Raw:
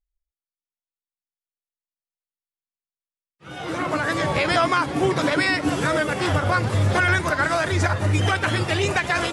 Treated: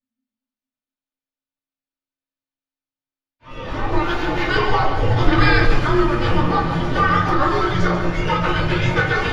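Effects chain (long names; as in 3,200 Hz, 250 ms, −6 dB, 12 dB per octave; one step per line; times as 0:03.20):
0:04.01–0:04.49: lower of the sound and its delayed copy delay 2.9 ms
moving average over 5 samples
low-shelf EQ 220 Hz −7 dB
hum removal 80.55 Hz, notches 31
frequency shifter −270 Hz
echo with a time of its own for lows and highs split 320 Hz, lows 229 ms, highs 140 ms, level −9 dB
rectangular room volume 140 cubic metres, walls furnished, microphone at 2.6 metres
0:05.38–0:05.79: envelope flattener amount 50%
level −2 dB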